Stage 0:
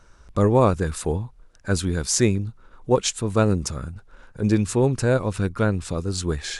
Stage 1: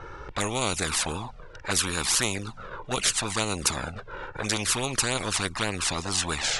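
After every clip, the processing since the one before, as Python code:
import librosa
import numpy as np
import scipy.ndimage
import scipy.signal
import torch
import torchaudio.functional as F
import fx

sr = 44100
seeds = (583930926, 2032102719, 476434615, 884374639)

y = fx.env_flanger(x, sr, rest_ms=2.4, full_db=-14.0)
y = fx.env_lowpass(y, sr, base_hz=2200.0, full_db=-19.0)
y = fx.spectral_comp(y, sr, ratio=4.0)
y = y * librosa.db_to_amplitude(-1.5)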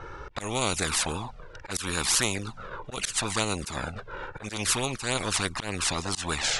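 y = fx.auto_swell(x, sr, attack_ms=118.0)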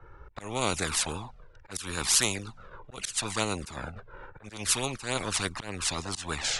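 y = fx.band_widen(x, sr, depth_pct=70)
y = y * librosa.db_to_amplitude(-3.0)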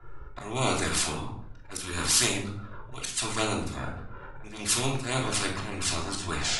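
y = fx.room_shoebox(x, sr, seeds[0], volume_m3=1000.0, walls='furnished', distance_m=3.1)
y = y * librosa.db_to_amplitude(-2.0)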